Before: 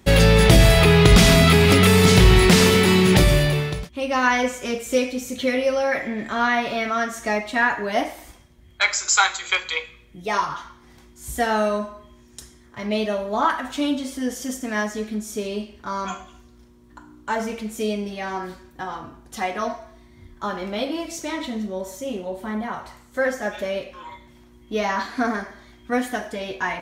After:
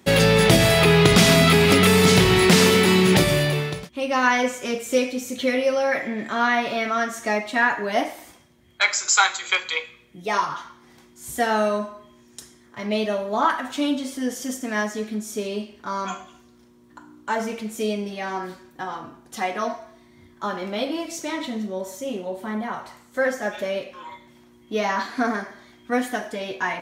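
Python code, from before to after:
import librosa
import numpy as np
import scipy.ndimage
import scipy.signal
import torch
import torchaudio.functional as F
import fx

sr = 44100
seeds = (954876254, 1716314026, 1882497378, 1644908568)

y = scipy.signal.sosfilt(scipy.signal.butter(2, 140.0, 'highpass', fs=sr, output='sos'), x)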